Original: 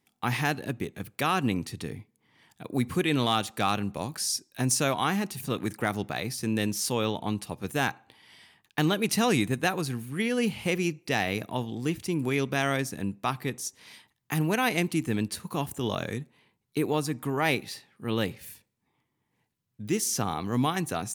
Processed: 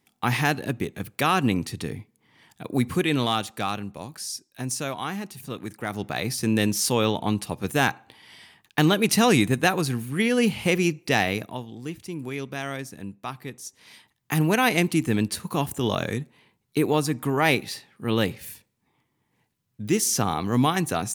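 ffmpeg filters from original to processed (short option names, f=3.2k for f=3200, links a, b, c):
-af "volume=24dB,afade=t=out:st=2.69:d=1.23:silence=0.375837,afade=t=in:st=5.82:d=0.49:silence=0.334965,afade=t=out:st=11.19:d=0.43:silence=0.298538,afade=t=in:st=13.61:d=0.81:silence=0.316228"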